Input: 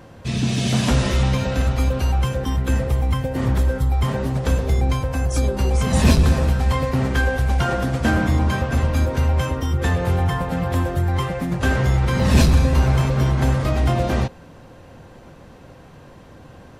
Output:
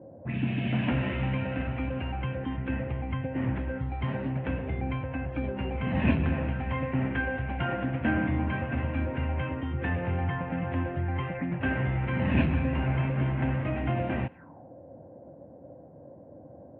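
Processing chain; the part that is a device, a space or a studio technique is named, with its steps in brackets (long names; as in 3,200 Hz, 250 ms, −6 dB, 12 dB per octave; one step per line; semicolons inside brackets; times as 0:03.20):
envelope filter bass rig (envelope-controlled low-pass 490–2,800 Hz up, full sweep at −20 dBFS; loudspeaker in its box 81–2,100 Hz, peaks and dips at 290 Hz +6 dB, 430 Hz −6 dB, 1,200 Hz −7 dB)
0:03.85–0:04.30: flat-topped bell 6,500 Hz +10 dB
level −8.5 dB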